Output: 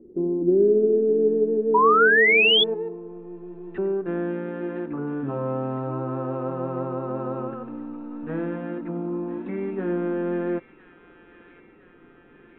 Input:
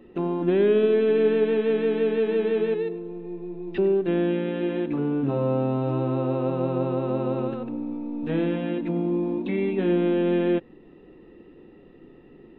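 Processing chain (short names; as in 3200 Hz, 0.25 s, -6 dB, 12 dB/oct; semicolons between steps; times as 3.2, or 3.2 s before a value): low-pass sweep 380 Hz -> 1400 Hz, 1.65–3.39; thin delay 1.01 s, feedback 64%, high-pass 2300 Hz, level -6 dB; painted sound rise, 1.74–2.64, 940–3500 Hz -13 dBFS; gain -4.5 dB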